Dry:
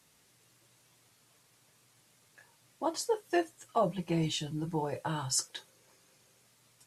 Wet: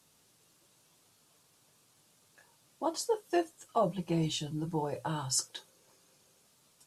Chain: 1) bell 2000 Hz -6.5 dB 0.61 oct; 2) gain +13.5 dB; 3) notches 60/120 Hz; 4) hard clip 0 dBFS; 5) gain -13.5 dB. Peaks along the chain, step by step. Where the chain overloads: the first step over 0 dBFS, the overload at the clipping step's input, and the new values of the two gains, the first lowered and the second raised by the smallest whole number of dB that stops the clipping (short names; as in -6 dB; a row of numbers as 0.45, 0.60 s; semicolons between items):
-17.0, -3.5, -3.5, -3.5, -17.0 dBFS; no overload